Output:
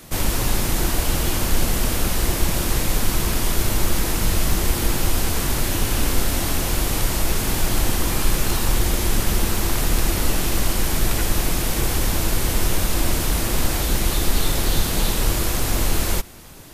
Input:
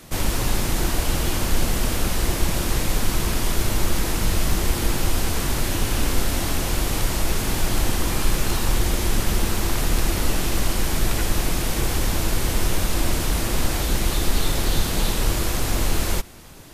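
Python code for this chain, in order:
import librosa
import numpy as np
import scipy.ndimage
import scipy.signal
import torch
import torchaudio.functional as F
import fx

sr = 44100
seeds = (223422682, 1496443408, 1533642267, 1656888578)

y = fx.high_shelf(x, sr, hz=12000.0, db=6.5)
y = y * 10.0 ** (1.0 / 20.0)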